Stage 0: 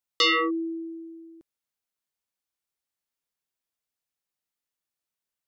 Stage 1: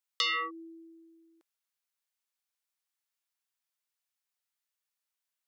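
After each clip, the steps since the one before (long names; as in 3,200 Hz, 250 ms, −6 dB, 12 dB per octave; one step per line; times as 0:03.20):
high-pass filter 870 Hz 12 dB per octave
downward compressor 2.5 to 1, threshold −31 dBFS, peak gain reduction 8.5 dB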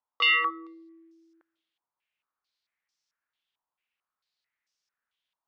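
on a send at −23 dB: convolution reverb RT60 0.75 s, pre-delay 105 ms
on the sum: low-pass on a step sequencer 4.5 Hz 960–5,500 Hz
level +2 dB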